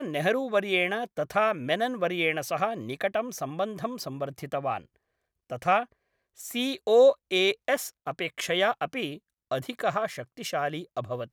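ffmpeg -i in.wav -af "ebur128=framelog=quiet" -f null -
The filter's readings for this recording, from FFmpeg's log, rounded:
Integrated loudness:
  I:         -27.8 LUFS
  Threshold: -38.0 LUFS
Loudness range:
  LRA:         6.2 LU
  Threshold: -48.1 LUFS
  LRA low:   -32.0 LUFS
  LRA high:  -25.9 LUFS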